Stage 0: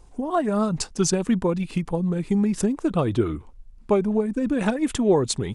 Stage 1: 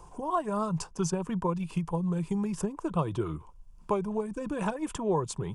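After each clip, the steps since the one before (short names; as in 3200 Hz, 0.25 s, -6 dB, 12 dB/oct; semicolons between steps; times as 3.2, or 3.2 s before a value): thirty-one-band EQ 160 Hz +7 dB, 250 Hz -12 dB, 1000 Hz +12 dB, 2000 Hz -8 dB, 4000 Hz -9 dB; three-band squash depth 40%; gain -8 dB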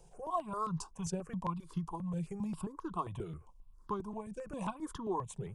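small resonant body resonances 1100/3900 Hz, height 8 dB; step phaser 7.5 Hz 290–2400 Hz; gain -5.5 dB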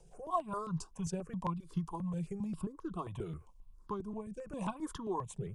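rotary speaker horn 5 Hz, later 0.65 Hz, at 1; gain +2 dB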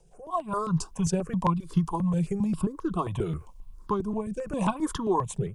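AGC gain up to 11.5 dB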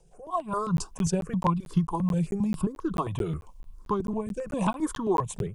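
crackling interface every 0.22 s, samples 512, zero, from 0.77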